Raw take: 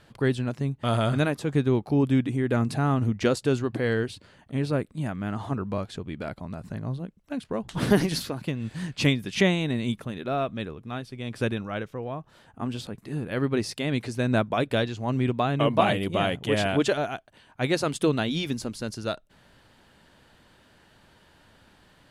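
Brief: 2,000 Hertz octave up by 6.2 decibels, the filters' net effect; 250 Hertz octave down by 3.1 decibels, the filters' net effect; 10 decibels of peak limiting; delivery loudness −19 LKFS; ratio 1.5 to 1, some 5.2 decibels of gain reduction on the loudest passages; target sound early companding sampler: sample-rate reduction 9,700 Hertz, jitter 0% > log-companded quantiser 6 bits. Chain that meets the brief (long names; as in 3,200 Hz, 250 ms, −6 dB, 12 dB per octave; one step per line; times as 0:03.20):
parametric band 250 Hz −4 dB
parametric band 2,000 Hz +8 dB
downward compressor 1.5 to 1, threshold −29 dBFS
brickwall limiter −20 dBFS
sample-rate reduction 9,700 Hz, jitter 0%
log-companded quantiser 6 bits
level +13 dB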